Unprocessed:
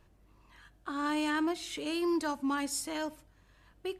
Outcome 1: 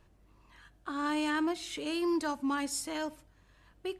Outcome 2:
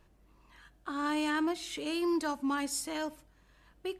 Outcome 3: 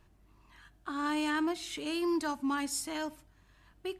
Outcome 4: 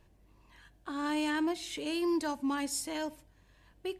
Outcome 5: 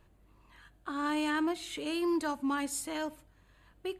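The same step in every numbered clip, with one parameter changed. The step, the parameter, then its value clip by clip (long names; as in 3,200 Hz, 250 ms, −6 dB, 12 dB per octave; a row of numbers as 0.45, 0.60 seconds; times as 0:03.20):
parametric band, centre frequency: 15,000, 100, 510, 1,300, 5,500 Hertz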